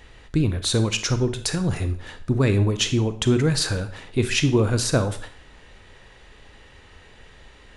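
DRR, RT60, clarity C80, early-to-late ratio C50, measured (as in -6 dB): 10.0 dB, 0.50 s, 16.5 dB, 12.5 dB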